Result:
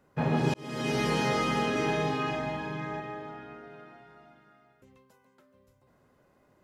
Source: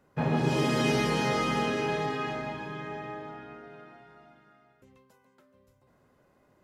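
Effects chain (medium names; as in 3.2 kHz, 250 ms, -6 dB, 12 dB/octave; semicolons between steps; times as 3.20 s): 0.54–1.10 s: fade in; 1.71–3.00 s: doubling 45 ms -2.5 dB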